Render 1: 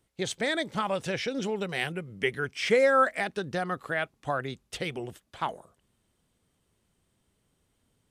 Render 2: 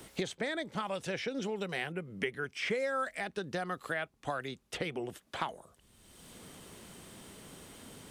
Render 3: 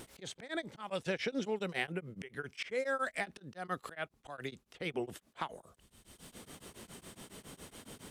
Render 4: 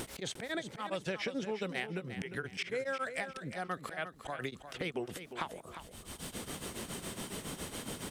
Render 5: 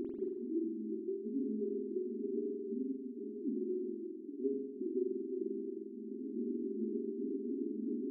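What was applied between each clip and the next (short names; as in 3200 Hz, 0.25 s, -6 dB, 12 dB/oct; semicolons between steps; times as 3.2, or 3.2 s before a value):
bell 120 Hz -3.5 dB 0.68 oct; three-band squash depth 100%; gain -6.5 dB
auto swell 0.17 s; vibrato 0.66 Hz 7.9 cents; beating tremolo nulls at 7.2 Hz; gain +2.5 dB
compressor 3:1, threshold -49 dBFS, peak gain reduction 14.5 dB; on a send: feedback echo 0.353 s, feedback 29%, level -10.5 dB; on the sum: gain +11 dB
FFT band-pass 210–420 Hz; spring tank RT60 1.3 s, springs 46 ms, DRR -1 dB; vocal rider within 4 dB 0.5 s; gain +5 dB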